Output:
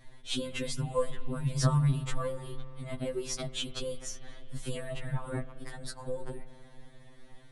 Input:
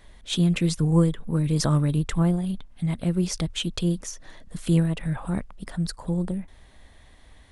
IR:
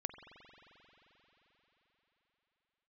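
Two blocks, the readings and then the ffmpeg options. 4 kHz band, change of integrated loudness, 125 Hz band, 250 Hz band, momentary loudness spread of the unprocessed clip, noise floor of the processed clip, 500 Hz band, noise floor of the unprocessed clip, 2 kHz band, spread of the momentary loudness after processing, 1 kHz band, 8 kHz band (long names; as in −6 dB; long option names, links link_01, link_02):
−5.5 dB, −9.0 dB, −9.0 dB, −14.5 dB, 10 LU, −53 dBFS, −3.5 dB, −52 dBFS, −5.0 dB, 16 LU, −3.0 dB, −5.5 dB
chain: -filter_complex "[0:a]lowshelf=frequency=260:gain=5,asplit=2[link_01][link_02];[1:a]atrim=start_sample=2205,highshelf=frequency=2200:gain=-5[link_03];[link_02][link_03]afir=irnorm=-1:irlink=0,volume=-2.5dB[link_04];[link_01][link_04]amix=inputs=2:normalize=0,afftfilt=real='re*2.45*eq(mod(b,6),0)':imag='im*2.45*eq(mod(b,6),0)':win_size=2048:overlap=0.75,volume=-5.5dB"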